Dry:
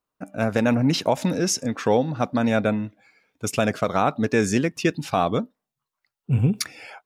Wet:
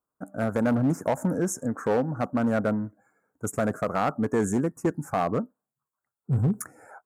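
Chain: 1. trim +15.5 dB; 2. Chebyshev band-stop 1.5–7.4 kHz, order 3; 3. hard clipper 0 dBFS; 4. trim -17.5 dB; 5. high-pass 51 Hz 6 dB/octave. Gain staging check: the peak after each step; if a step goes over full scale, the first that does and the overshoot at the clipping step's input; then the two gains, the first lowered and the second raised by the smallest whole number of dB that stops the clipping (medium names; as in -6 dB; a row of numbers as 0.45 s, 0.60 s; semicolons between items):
+8.0 dBFS, +8.0 dBFS, 0.0 dBFS, -17.5 dBFS, -14.5 dBFS; step 1, 8.0 dB; step 1 +7.5 dB, step 4 -9.5 dB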